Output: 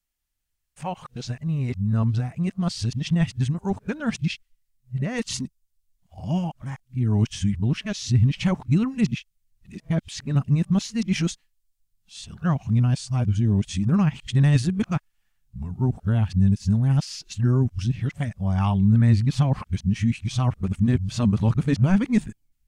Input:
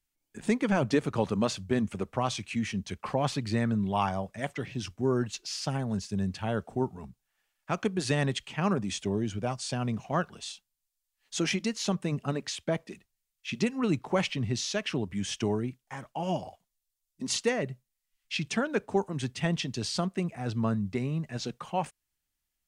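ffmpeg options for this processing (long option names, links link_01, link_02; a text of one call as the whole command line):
ffmpeg -i in.wav -af "areverse,asubboost=boost=10:cutoff=140" out.wav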